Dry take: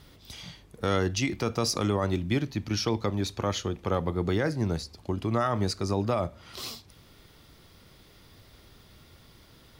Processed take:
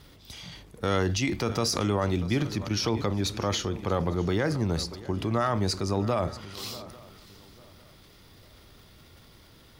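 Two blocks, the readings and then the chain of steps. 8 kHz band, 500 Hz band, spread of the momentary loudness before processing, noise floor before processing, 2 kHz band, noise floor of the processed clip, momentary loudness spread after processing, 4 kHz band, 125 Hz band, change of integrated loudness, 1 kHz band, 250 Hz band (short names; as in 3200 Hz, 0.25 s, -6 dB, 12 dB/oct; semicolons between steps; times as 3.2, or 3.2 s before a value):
+2.0 dB, +0.5 dB, 12 LU, -56 dBFS, +1.0 dB, -54 dBFS, 12 LU, +2.0 dB, +1.0 dB, +1.0 dB, +1.0 dB, +1.0 dB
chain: swung echo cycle 0.849 s, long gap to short 3:1, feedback 30%, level -20 dB; transient shaper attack 0 dB, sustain +7 dB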